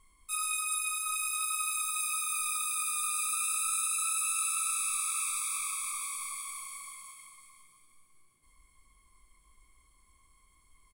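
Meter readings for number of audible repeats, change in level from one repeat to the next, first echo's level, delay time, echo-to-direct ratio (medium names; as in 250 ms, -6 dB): 2, -7.5 dB, -19.0 dB, 719 ms, -18.5 dB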